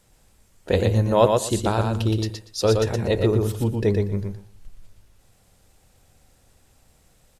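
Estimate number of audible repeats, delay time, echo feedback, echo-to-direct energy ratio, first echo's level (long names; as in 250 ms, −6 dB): 3, 119 ms, 18%, −4.0 dB, −4.0 dB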